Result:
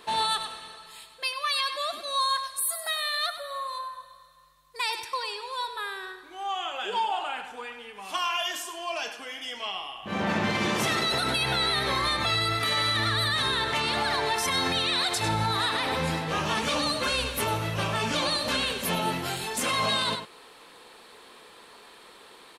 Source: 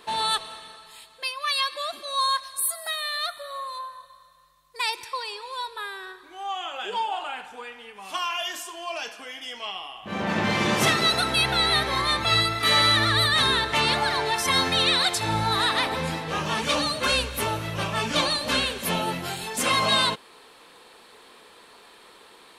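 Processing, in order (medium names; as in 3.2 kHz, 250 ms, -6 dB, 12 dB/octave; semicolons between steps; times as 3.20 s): echo from a far wall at 17 m, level -11 dB; peak limiter -17.5 dBFS, peak gain reduction 8.5 dB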